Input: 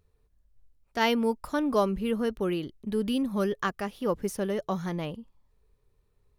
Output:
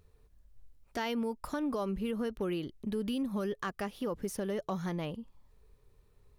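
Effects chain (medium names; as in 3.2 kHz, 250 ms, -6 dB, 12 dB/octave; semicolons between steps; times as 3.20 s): peak limiter -21 dBFS, peak gain reduction 8 dB; compression 2:1, threshold -44 dBFS, peak gain reduction 10 dB; hard clipper -31 dBFS, distortion -32 dB; trim +5 dB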